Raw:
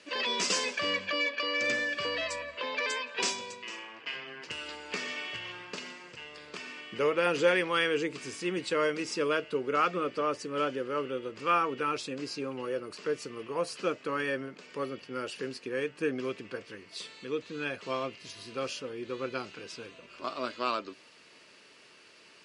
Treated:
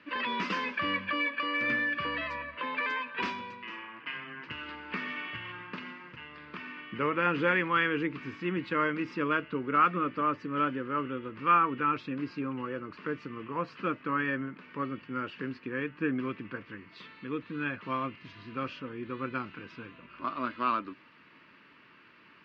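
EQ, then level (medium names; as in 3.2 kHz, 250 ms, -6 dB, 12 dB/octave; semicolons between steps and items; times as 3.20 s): low-pass 2.1 kHz 12 dB/octave; distance through air 170 m; high-order bell 550 Hz -11 dB 1.3 oct; +5.5 dB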